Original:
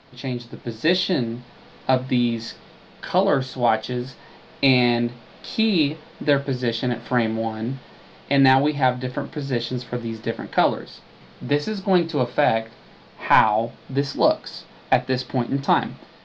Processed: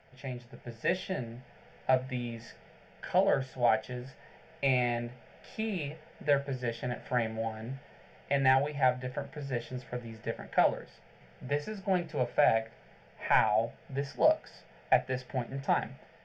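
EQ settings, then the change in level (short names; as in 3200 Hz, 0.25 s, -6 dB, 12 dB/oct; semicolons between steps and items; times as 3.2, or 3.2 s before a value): fixed phaser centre 1100 Hz, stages 6; -5.5 dB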